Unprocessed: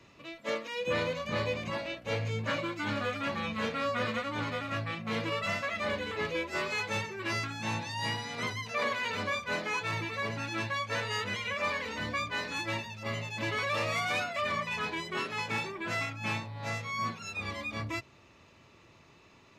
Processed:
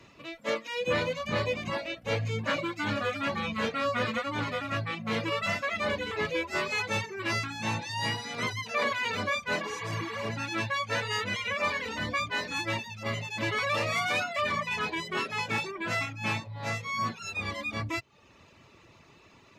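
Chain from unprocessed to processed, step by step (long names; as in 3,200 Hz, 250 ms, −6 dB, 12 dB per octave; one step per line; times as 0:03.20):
healed spectral selection 0:09.63–0:10.24, 830–4,600 Hz after
reverb reduction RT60 0.56 s
level +3.5 dB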